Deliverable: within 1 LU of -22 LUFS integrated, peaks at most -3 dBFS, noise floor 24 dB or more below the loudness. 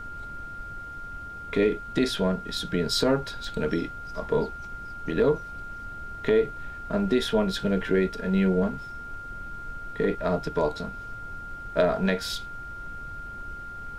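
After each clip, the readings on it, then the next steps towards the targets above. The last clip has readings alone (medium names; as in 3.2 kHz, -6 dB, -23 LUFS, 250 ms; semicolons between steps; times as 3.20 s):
steady tone 1.4 kHz; tone level -37 dBFS; noise floor -39 dBFS; noise floor target -52 dBFS; loudness -28.0 LUFS; peak level -9.0 dBFS; loudness target -22.0 LUFS
-> band-stop 1.4 kHz, Q 30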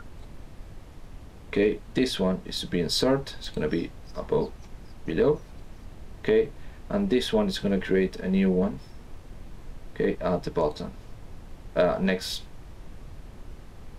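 steady tone not found; noise floor -46 dBFS; noise floor target -51 dBFS
-> noise print and reduce 6 dB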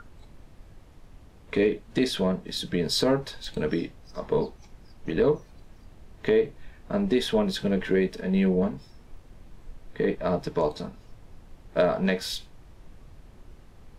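noise floor -52 dBFS; loudness -27.0 LUFS; peak level -9.5 dBFS; loudness target -22.0 LUFS
-> trim +5 dB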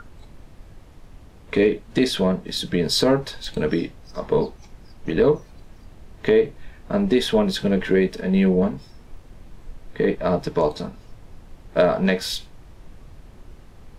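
loudness -22.0 LUFS; peak level -4.5 dBFS; noise floor -47 dBFS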